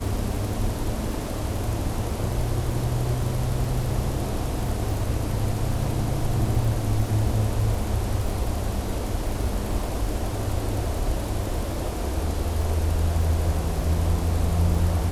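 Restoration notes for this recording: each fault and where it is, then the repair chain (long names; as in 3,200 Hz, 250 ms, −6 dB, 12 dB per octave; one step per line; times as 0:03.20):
surface crackle 31 per second −31 dBFS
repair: click removal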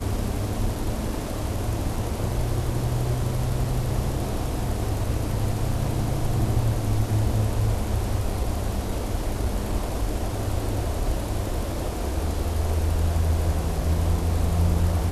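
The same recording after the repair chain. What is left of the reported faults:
none of them is left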